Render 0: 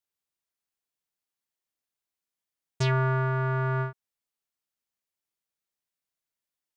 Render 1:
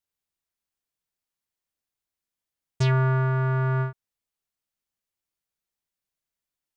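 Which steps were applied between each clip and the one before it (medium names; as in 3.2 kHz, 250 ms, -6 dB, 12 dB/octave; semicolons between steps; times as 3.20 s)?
bass shelf 130 Hz +8.5 dB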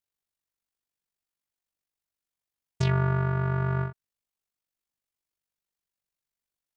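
AM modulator 48 Hz, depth 50%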